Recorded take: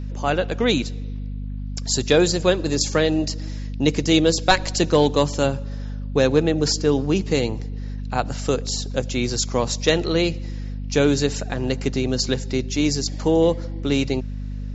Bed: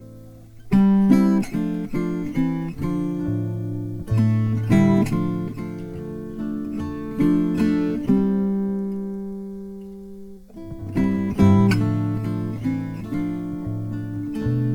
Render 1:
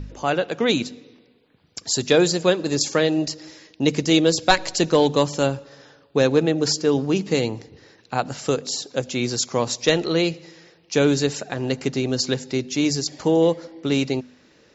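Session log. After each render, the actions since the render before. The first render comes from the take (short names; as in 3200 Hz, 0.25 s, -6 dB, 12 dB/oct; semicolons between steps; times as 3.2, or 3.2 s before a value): de-hum 50 Hz, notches 5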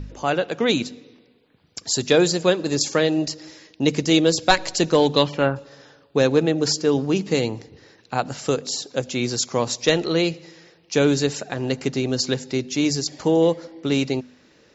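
5.13–5.55 synth low-pass 4800 Hz -> 1400 Hz, resonance Q 2.6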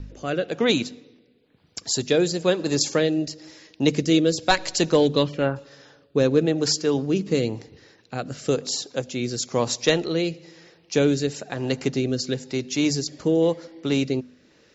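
rotary speaker horn 1 Hz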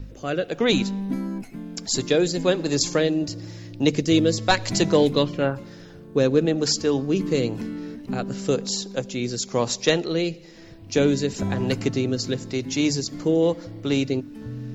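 add bed -12 dB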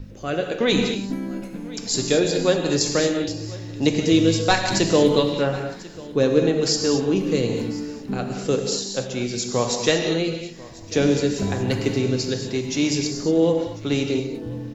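echo 1.043 s -20.5 dB; non-linear reverb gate 0.26 s flat, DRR 3 dB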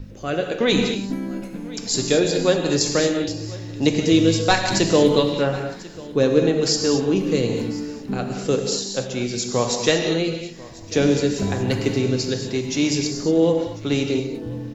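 gain +1 dB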